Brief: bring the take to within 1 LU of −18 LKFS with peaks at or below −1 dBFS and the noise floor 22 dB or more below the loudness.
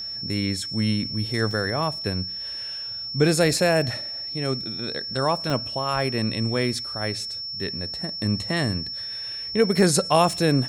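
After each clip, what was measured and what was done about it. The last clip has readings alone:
number of dropouts 2; longest dropout 2.7 ms; interfering tone 5,400 Hz; level of the tone −30 dBFS; integrated loudness −24.0 LKFS; sample peak −5.5 dBFS; target loudness −18.0 LKFS
→ repair the gap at 0:01.51/0:05.50, 2.7 ms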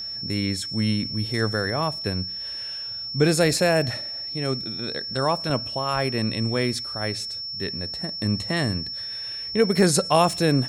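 number of dropouts 0; interfering tone 5,400 Hz; level of the tone −30 dBFS
→ notch filter 5,400 Hz, Q 30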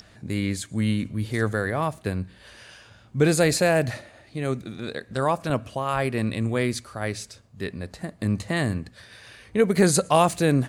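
interfering tone none found; integrated loudness −25.0 LKFS; sample peak −5.5 dBFS; target loudness −18.0 LKFS
→ level +7 dB
brickwall limiter −1 dBFS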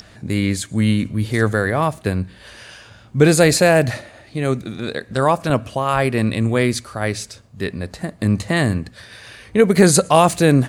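integrated loudness −18.0 LKFS; sample peak −1.0 dBFS; background noise floor −46 dBFS

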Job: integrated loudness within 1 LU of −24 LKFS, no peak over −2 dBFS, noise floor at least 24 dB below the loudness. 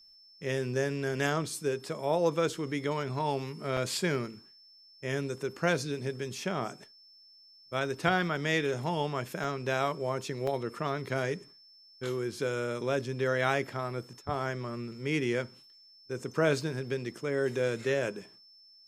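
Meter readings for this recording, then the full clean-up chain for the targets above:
number of dropouts 3; longest dropout 3.6 ms; interfering tone 5,300 Hz; level of the tone −55 dBFS; integrated loudness −32.0 LKFS; sample peak −10.5 dBFS; target loudness −24.0 LKFS
→ repair the gap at 0:03.77/0:09.44/0:10.47, 3.6 ms
notch filter 5,300 Hz, Q 30
level +8 dB

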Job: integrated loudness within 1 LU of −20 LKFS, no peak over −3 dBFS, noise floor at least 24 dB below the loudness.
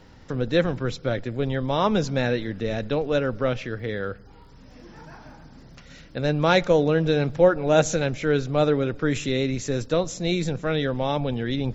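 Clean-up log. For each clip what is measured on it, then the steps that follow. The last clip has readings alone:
crackle rate 31 per second; integrated loudness −24.0 LKFS; sample peak −4.0 dBFS; target loudness −20.0 LKFS
→ click removal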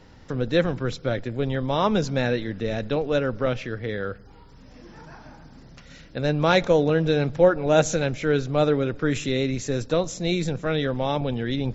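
crackle rate 0.085 per second; integrated loudness −24.0 LKFS; sample peak −4.0 dBFS; target loudness −20.0 LKFS
→ level +4 dB
brickwall limiter −3 dBFS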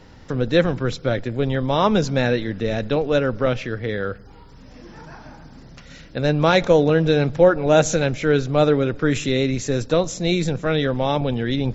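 integrated loudness −20.0 LKFS; sample peak −3.0 dBFS; background noise floor −44 dBFS

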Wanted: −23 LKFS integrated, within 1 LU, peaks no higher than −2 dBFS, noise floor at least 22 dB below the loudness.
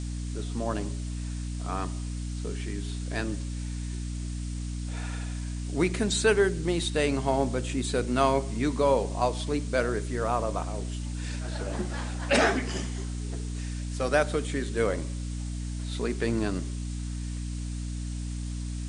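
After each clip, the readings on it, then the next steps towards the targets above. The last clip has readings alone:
mains hum 60 Hz; hum harmonics up to 300 Hz; level of the hum −31 dBFS; background noise floor −34 dBFS; target noise floor −52 dBFS; integrated loudness −30.0 LKFS; sample peak −9.5 dBFS; target loudness −23.0 LKFS
→ mains-hum notches 60/120/180/240/300 Hz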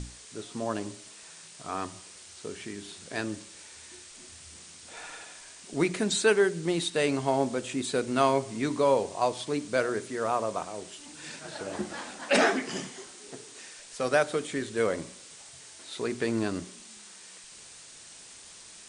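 mains hum none found; background noise floor −49 dBFS; target noise floor −51 dBFS
→ broadband denoise 6 dB, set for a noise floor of −49 dBFS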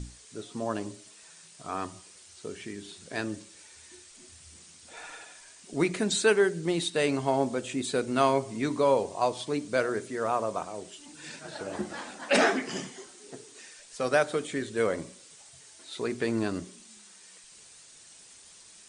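background noise floor −53 dBFS; integrated loudness −29.0 LKFS; sample peak −9.5 dBFS; target loudness −23.0 LKFS
→ level +6 dB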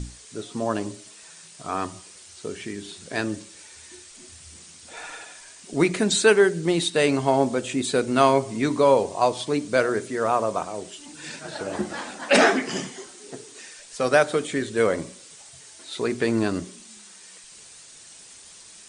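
integrated loudness −23.0 LKFS; sample peak −3.5 dBFS; background noise floor −47 dBFS

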